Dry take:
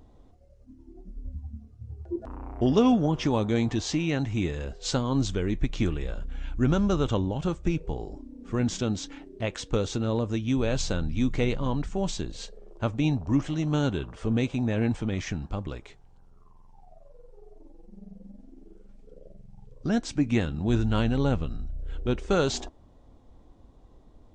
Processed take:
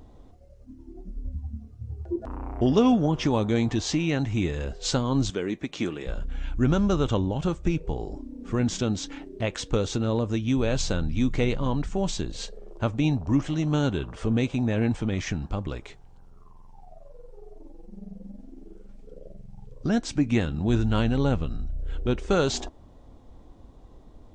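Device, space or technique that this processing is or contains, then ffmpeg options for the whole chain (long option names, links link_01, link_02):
parallel compression: -filter_complex "[0:a]asplit=2[link_01][link_02];[link_02]acompressor=threshold=-34dB:ratio=6,volume=-3dB[link_03];[link_01][link_03]amix=inputs=2:normalize=0,asettb=1/sr,asplit=3[link_04][link_05][link_06];[link_04]atrim=end=5.304[link_07];[link_05]atrim=start=5.3:end=6.07,asetpts=PTS-STARTPTS,afade=type=in:duration=0.004:curve=qsin,afade=type=out:start_time=0.766:duration=0.004:curve=qsin,highpass=230[link_08];[link_06]atrim=start=6.066[link_09];[link_07][link_08]acrossfade=duration=0.004:curve1=hsin:curve2=qsin[link_10];[link_10][link_09]acrossfade=duration=0.004:curve1=qsin:curve2=hsin"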